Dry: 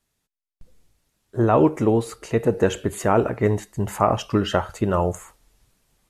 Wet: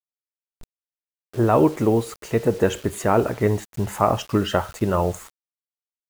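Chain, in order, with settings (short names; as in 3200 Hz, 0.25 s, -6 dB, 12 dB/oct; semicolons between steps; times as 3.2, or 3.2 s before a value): bit-crush 7-bit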